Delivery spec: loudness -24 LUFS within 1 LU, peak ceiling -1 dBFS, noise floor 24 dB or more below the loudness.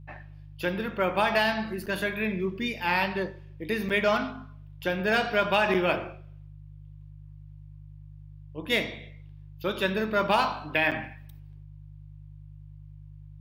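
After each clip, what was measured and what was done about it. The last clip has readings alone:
dropouts 4; longest dropout 6.9 ms; hum 50 Hz; highest harmonic 150 Hz; hum level -44 dBFS; loudness -27.0 LUFS; peak level -11.0 dBFS; loudness target -24.0 LUFS
-> interpolate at 1.86/3.89/5.74/10.91 s, 6.9 ms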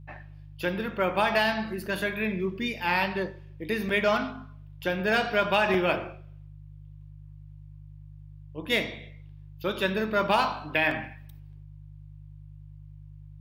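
dropouts 0; hum 50 Hz; highest harmonic 150 Hz; hum level -44 dBFS
-> de-hum 50 Hz, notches 3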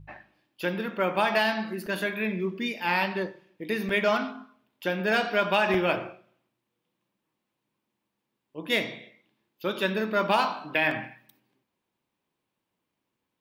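hum not found; loudness -27.0 LUFS; peak level -11.0 dBFS; loudness target -24.0 LUFS
-> trim +3 dB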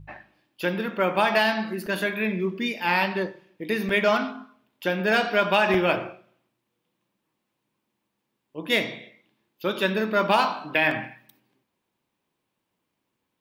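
loudness -24.0 LUFS; peak level -8.0 dBFS; noise floor -80 dBFS

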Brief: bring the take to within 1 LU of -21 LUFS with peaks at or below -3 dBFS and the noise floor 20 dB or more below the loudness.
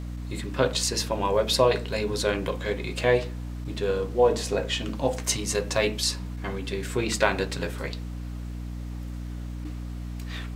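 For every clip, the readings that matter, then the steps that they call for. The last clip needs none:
hum 60 Hz; highest harmonic 300 Hz; hum level -32 dBFS; loudness -27.5 LUFS; peak level -4.5 dBFS; loudness target -21.0 LUFS
-> hum notches 60/120/180/240/300 Hz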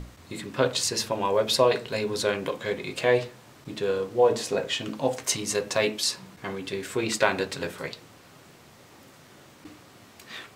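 hum not found; loudness -26.5 LUFS; peak level -4.5 dBFS; loudness target -21.0 LUFS
-> trim +5.5 dB; peak limiter -3 dBFS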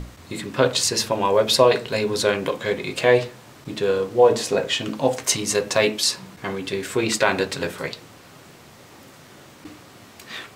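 loudness -21.0 LUFS; peak level -3.0 dBFS; noise floor -47 dBFS

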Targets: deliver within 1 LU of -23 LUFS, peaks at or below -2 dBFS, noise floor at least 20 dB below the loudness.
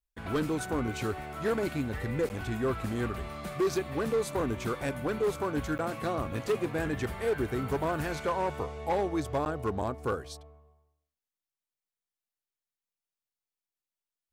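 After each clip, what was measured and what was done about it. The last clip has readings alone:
clipped samples 1.5%; clipping level -23.0 dBFS; dropouts 3; longest dropout 9.6 ms; loudness -32.0 LUFS; peak level -23.0 dBFS; loudness target -23.0 LUFS
-> clip repair -23 dBFS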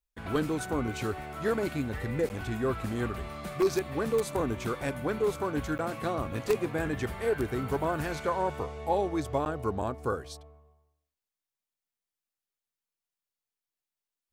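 clipped samples 0.0%; dropouts 3; longest dropout 9.6 ms
-> interpolate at 2.29/5.78/9.45 s, 9.6 ms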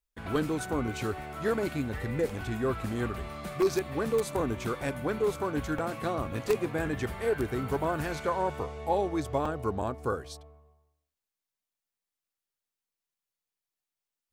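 dropouts 0; loudness -31.5 LUFS; peak level -14.0 dBFS; loudness target -23.0 LUFS
-> trim +8.5 dB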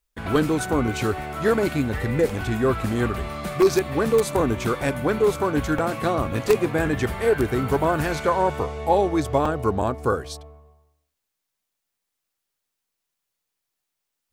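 loudness -23.0 LUFS; peak level -5.5 dBFS; noise floor -81 dBFS

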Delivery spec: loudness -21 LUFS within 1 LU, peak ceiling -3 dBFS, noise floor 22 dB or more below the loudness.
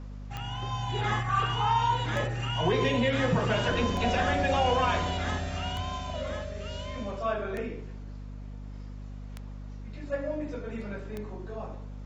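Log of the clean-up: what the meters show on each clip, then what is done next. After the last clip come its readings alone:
clicks found 7; hum 50 Hz; highest harmonic 250 Hz; hum level -38 dBFS; loudness -29.5 LUFS; peak level -14.0 dBFS; loudness target -21.0 LUFS
-> de-click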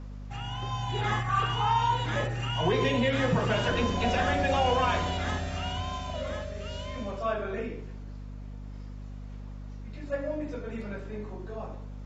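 clicks found 0; hum 50 Hz; highest harmonic 250 Hz; hum level -38 dBFS
-> hum notches 50/100/150/200/250 Hz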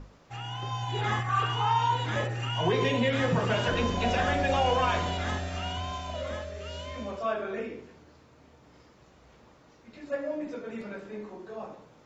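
hum not found; loudness -29.5 LUFS; peak level -14.5 dBFS; loudness target -21.0 LUFS
-> trim +8.5 dB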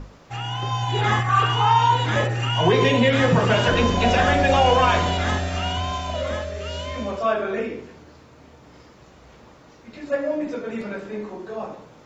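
loudness -21.0 LUFS; peak level -6.0 dBFS; noise floor -49 dBFS

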